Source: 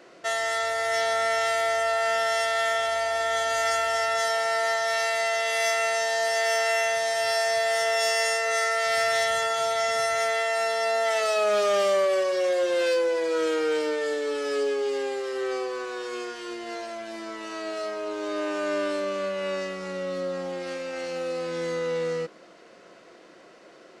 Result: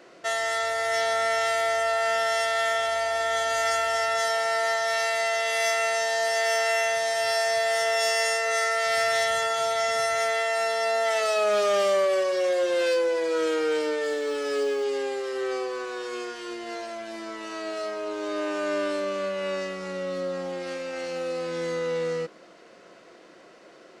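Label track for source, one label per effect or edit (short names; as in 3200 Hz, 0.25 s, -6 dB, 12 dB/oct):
14.030000	14.840000	companded quantiser 8-bit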